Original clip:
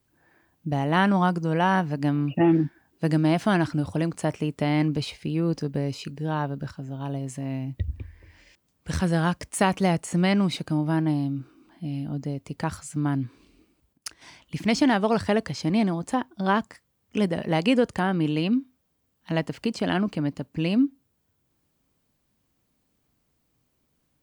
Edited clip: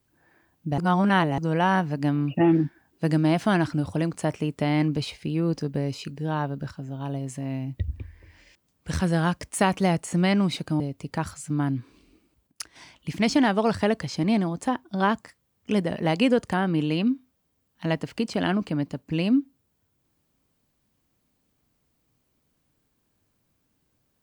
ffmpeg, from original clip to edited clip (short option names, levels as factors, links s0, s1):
-filter_complex "[0:a]asplit=4[s0][s1][s2][s3];[s0]atrim=end=0.782[s4];[s1]atrim=start=0.778:end=1.382,asetpts=PTS-STARTPTS,areverse[s5];[s2]atrim=start=1.378:end=10.802[s6];[s3]atrim=start=12.258[s7];[s4][s5]acrossfade=d=0.004:c1=hsin:c2=hsin[s8];[s8][s6]acrossfade=d=0.004:c1=hsin:c2=hsin[s9];[s9][s7]acrossfade=d=0.004:c1=hsin:c2=hsin"